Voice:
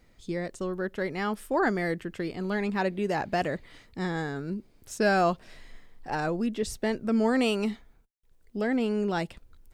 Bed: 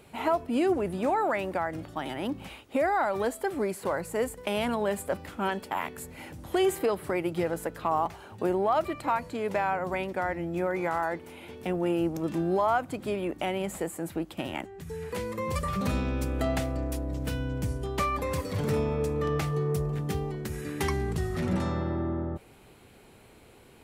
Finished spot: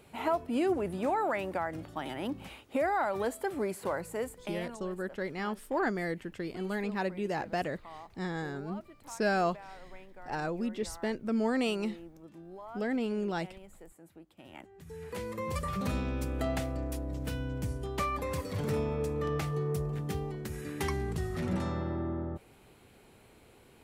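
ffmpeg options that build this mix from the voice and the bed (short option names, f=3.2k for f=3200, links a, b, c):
-filter_complex "[0:a]adelay=4200,volume=-5dB[a];[1:a]volume=13.5dB,afade=t=out:st=3.91:d=0.94:silence=0.133352,afade=t=in:st=14.38:d=0.92:silence=0.141254[b];[a][b]amix=inputs=2:normalize=0"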